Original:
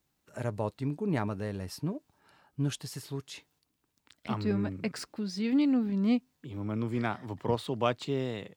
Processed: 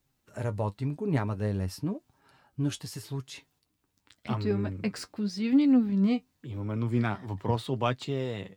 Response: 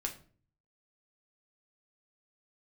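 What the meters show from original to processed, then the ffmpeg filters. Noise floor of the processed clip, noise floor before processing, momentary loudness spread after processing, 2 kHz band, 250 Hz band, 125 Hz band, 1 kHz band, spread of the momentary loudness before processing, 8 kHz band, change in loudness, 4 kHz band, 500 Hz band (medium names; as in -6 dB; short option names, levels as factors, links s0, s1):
-76 dBFS, -79 dBFS, 15 LU, +0.5 dB, +2.5 dB, +4.0 dB, +1.0 dB, 13 LU, +0.5 dB, +2.5 dB, +0.5 dB, +0.5 dB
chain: -af "lowshelf=f=98:g=8.5,flanger=delay=7.3:depth=3.4:regen=46:speed=0.89:shape=sinusoidal,volume=1.68"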